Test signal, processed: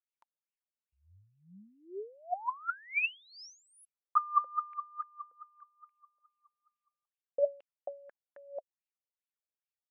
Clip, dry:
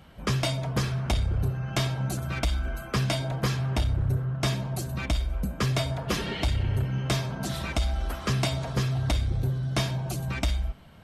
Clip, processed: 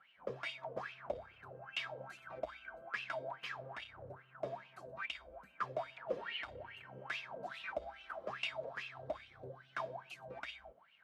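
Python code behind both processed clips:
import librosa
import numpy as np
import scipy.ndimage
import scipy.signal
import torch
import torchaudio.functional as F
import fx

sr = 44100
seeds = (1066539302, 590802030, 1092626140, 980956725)

y = fx.wah_lfo(x, sr, hz=2.4, low_hz=490.0, high_hz=2800.0, q=9.9)
y = y * librosa.db_to_amplitude(3.0)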